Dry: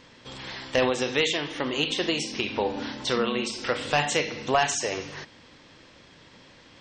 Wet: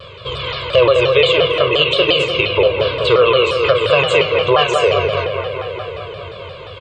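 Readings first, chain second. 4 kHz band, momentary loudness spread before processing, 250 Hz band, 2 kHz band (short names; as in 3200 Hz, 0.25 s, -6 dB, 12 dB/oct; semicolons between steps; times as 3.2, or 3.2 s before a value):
+12.5 dB, 14 LU, +4.5 dB, +11.0 dB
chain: HPF 51 Hz; bell 92 Hz +7 dB 0.38 oct; comb 1.8 ms, depth 72%; in parallel at +2 dB: compressor, threshold -34 dBFS, peak gain reduction 18 dB; on the sum: air absorption 99 m; fixed phaser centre 1200 Hz, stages 8; on a send: analogue delay 0.208 s, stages 4096, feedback 75%, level -7 dB; on the sum: maximiser +11.5 dB; shaped vibrato saw down 5.7 Hz, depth 160 cents; gain -1 dB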